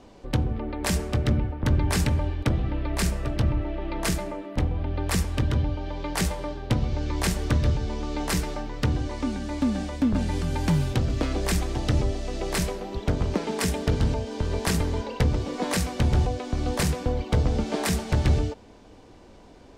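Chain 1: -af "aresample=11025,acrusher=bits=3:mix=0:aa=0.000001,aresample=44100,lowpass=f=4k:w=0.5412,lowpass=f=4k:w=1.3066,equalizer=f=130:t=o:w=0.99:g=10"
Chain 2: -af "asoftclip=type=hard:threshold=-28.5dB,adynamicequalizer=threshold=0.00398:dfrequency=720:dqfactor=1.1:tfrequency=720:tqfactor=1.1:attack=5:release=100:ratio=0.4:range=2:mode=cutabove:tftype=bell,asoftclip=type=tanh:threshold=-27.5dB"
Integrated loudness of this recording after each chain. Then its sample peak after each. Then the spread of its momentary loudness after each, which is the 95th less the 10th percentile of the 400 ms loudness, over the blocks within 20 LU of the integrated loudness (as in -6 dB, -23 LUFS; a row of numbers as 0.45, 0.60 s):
-22.0, -35.0 LUFS; -4.5, -29.0 dBFS; 8, 3 LU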